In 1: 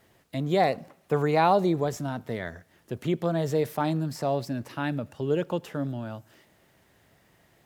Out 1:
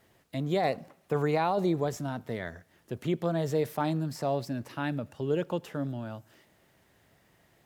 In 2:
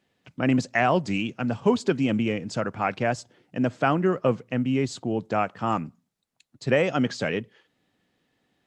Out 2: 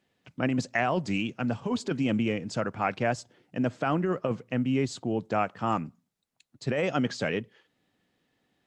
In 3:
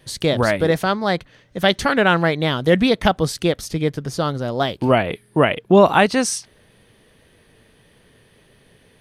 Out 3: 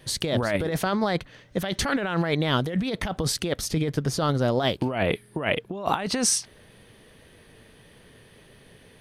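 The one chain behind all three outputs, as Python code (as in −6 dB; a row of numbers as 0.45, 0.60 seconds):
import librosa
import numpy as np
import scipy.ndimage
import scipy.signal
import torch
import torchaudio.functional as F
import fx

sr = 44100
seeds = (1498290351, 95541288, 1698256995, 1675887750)

y = fx.over_compress(x, sr, threshold_db=-22.0, ratio=-1.0)
y = y * librosa.db_to_amplitude(-3.0)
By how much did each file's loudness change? −3.5, −4.0, −7.5 LU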